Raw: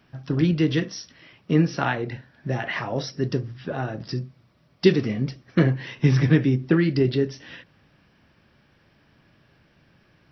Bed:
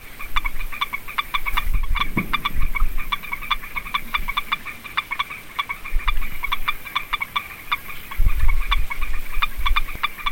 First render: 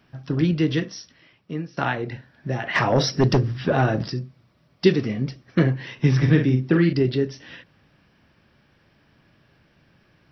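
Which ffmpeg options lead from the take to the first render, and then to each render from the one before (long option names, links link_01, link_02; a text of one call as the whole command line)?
ffmpeg -i in.wav -filter_complex "[0:a]asplit=3[link_01][link_02][link_03];[link_01]afade=type=out:start_time=2.74:duration=0.02[link_04];[link_02]aeval=exprs='0.282*sin(PI/2*2*val(0)/0.282)':channel_layout=same,afade=type=in:start_time=2.74:duration=0.02,afade=type=out:start_time=4.08:duration=0.02[link_05];[link_03]afade=type=in:start_time=4.08:duration=0.02[link_06];[link_04][link_05][link_06]amix=inputs=3:normalize=0,asettb=1/sr,asplit=3[link_07][link_08][link_09];[link_07]atrim=end=6.184[link_10];[link_08]atrim=start=6.18:end=6.93,asetpts=PTS-STARTPTS,afade=type=in:duration=0.004:curve=qsin,afade=type=out:start_time=0.746:duration=0.004:curve=qsin,asplit=2[link_11][link_12];[link_12]adelay=47,volume=-6.5dB[link_13];[link_11][link_13]amix=inputs=2:normalize=0,atrim=end_sample=33075[link_14];[link_09]atrim=start=6.926[link_15];[link_10][link_14]acrossfade=duration=0.004:curve1=hsin:curve2=qsin[link_16];[link_16][link_15]acrossfade=duration=0.004:curve1=qsin:curve2=hsin,asplit=2[link_17][link_18];[link_17]atrim=end=1.77,asetpts=PTS-STARTPTS,afade=type=out:start_time=0.75:duration=1.02:silence=0.125893[link_19];[link_18]atrim=start=1.77,asetpts=PTS-STARTPTS,afade=type=in:duration=0.004:curve=hsin:silence=0.125893[link_20];[link_19][link_20]concat=n=2:v=0:a=1" out.wav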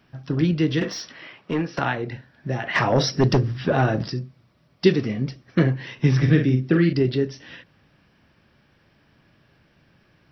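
ffmpeg -i in.wav -filter_complex "[0:a]asettb=1/sr,asplit=3[link_01][link_02][link_03];[link_01]atrim=end=0.814[link_04];[link_02]atrim=start=0.81:end=1.79,asetpts=PTS-STARTPTS,afade=type=in:duration=0.004:curve=qsin,afade=type=out:start_time=0.976:duration=0.004:curve=qsin,asplit=2[link_05][link_06];[link_06]highpass=frequency=720:poles=1,volume=24dB,asoftclip=type=tanh:threshold=-12.5dB[link_07];[link_05][link_07]amix=inputs=2:normalize=0,lowpass=frequency=1700:poles=1,volume=-6dB[link_08];[link_03]atrim=start=1.786[link_09];[link_04][link_08]acrossfade=duration=0.004:curve1=hsin:curve2=qsin[link_10];[link_10][link_09]acrossfade=duration=0.004:curve1=qsin:curve2=hsin,asettb=1/sr,asplit=3[link_11][link_12][link_13];[link_11]atrim=end=6.224[link_14];[link_12]atrim=start=6.22:end=6.94,asetpts=PTS-STARTPTS,afade=type=in:duration=0.004:curve=qsin,afade=type=out:start_time=0.716:duration=0.004:curve=qsin,equalizer=frequency=930:width=3.7:gain=-8[link_15];[link_13]atrim=start=6.936[link_16];[link_14][link_15]acrossfade=duration=0.004:curve1=hsin:curve2=qsin[link_17];[link_17][link_16]acrossfade=duration=0.004:curve1=qsin:curve2=hsin" out.wav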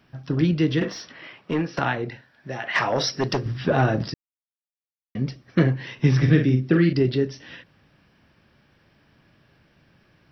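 ffmpeg -i in.wav -filter_complex "[0:a]asettb=1/sr,asplit=3[link_01][link_02][link_03];[link_01]atrim=end=0.744[link_04];[link_02]atrim=start=0.74:end=1.24,asetpts=PTS-STARTPTS,afade=type=in:duration=0.004:curve=qsin,afade=type=out:start_time=0.496:duration=0.004:curve=qsin,aemphasis=mode=reproduction:type=cd[link_05];[link_03]atrim=start=1.236[link_06];[link_04][link_05]acrossfade=duration=0.004:curve1=hsin:curve2=qsin[link_07];[link_07][link_06]acrossfade=duration=0.004:curve1=qsin:curve2=hsin,asettb=1/sr,asplit=3[link_08][link_09][link_10];[link_08]atrim=end=2.104[link_11];[link_09]atrim=start=2.1:end=3.46,asetpts=PTS-STARTPTS,afade=type=in:duration=0.004:curve=qsin,afade=type=out:start_time=1.356:duration=0.004:curve=qsin,lowshelf=frequency=340:gain=-11.5[link_12];[link_10]atrim=start=3.456[link_13];[link_11][link_12]acrossfade=duration=0.004:curve1=hsin:curve2=qsin[link_14];[link_14][link_13]acrossfade=duration=0.004:curve1=qsin:curve2=hsin,asplit=3[link_15][link_16][link_17];[link_15]atrim=end=4.14,asetpts=PTS-STARTPTS,afade=type=out:start_time=4.136:duration=0.004:curve=hsin[link_18];[link_16]atrim=start=4.14:end=5.15,asetpts=PTS-STARTPTS,volume=0[link_19];[link_17]atrim=start=5.15,asetpts=PTS-STARTPTS,afade=type=in:duration=0.004:curve=hsin[link_20];[link_18][link_19][link_20]concat=n=3:v=0:a=1" out.wav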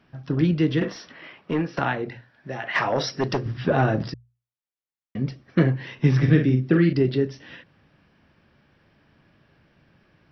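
ffmpeg -i in.wav -af "lowpass=frequency=3500:poles=1,bandreject=frequency=60:width_type=h:width=6,bandreject=frequency=120:width_type=h:width=6" out.wav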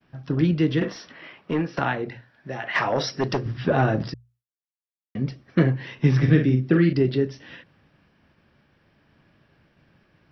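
ffmpeg -i in.wav -af "agate=range=-33dB:threshold=-58dB:ratio=3:detection=peak" out.wav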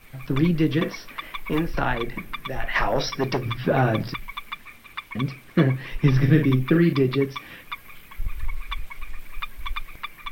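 ffmpeg -i in.wav -i bed.wav -filter_complex "[1:a]volume=-11dB[link_01];[0:a][link_01]amix=inputs=2:normalize=0" out.wav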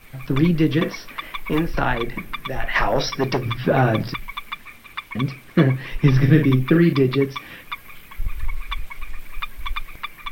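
ffmpeg -i in.wav -af "volume=3dB" out.wav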